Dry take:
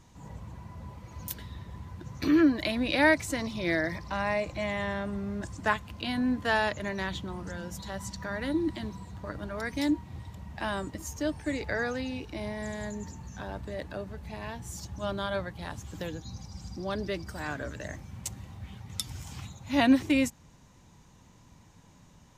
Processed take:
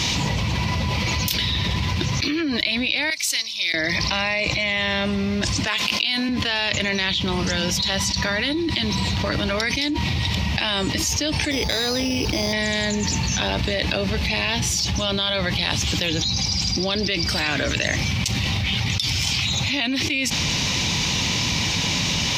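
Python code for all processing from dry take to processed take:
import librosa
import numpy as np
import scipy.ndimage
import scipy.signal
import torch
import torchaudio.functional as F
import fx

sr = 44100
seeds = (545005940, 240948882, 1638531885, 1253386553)

y = fx.chain(x, sr, fx.pre_emphasis(coefficient=0.97),
    fx.upward_expand(threshold_db=-51.0, expansion=2.5), at=(3.1, 3.74))
y = fx.chain(y, sr, fx.highpass(hz=280.0, slope=12),
    fx.high_shelf(hz=4700.0, db=7.0), at=(5.67, 6.29))
y = fx.chain(y, sr, fx.lowpass(hz=1400.0, slope=12),
    fx.resample_bad(factor=8, down='none', up='hold'),
    fx.transformer_sat(knee_hz=390.0), at=(11.51, 12.53))
y = scipy.signal.sosfilt(scipy.signal.butter(2, 60.0, 'highpass', fs=sr, output='sos'), y)
y = fx.band_shelf(y, sr, hz=3500.0, db=16.0, octaves=1.7)
y = fx.env_flatten(y, sr, amount_pct=100)
y = F.gain(torch.from_numpy(y), -9.0).numpy()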